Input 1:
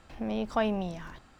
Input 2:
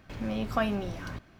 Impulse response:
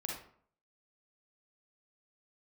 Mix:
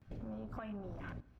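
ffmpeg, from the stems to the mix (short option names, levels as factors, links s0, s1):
-filter_complex "[0:a]bandpass=f=190:t=q:w=1.4:csg=0,volume=0.376[s0];[1:a]afwtdn=0.00891,acompressor=threshold=0.02:ratio=6,adelay=17,volume=1.33,asplit=2[s1][s2];[s2]volume=0.158[s3];[2:a]atrim=start_sample=2205[s4];[s3][s4]afir=irnorm=-1:irlink=0[s5];[s0][s1][s5]amix=inputs=3:normalize=0,acompressor=threshold=0.00562:ratio=3"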